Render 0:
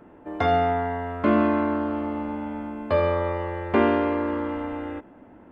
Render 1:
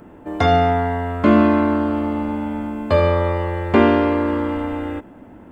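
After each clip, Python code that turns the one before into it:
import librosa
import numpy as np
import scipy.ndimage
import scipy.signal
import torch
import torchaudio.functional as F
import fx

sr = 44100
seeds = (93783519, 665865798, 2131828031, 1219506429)

y = fx.bass_treble(x, sr, bass_db=5, treble_db=11)
y = y * librosa.db_to_amplitude(5.0)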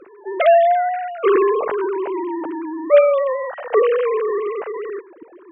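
y = fx.sine_speech(x, sr)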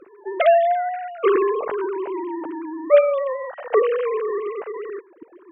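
y = fx.transient(x, sr, attack_db=3, sustain_db=-4)
y = y * librosa.db_to_amplitude(-3.5)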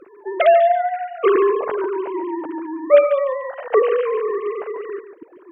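y = x + 10.0 ** (-11.0 / 20.0) * np.pad(x, (int(143 * sr / 1000.0), 0))[:len(x)]
y = y * librosa.db_to_amplitude(2.0)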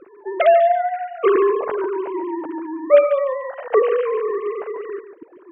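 y = fx.air_absorb(x, sr, metres=130.0)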